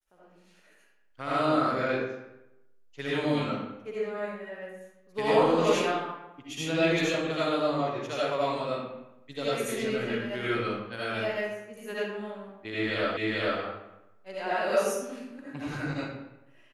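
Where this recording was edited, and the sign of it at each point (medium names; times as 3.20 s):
13.17 s: repeat of the last 0.44 s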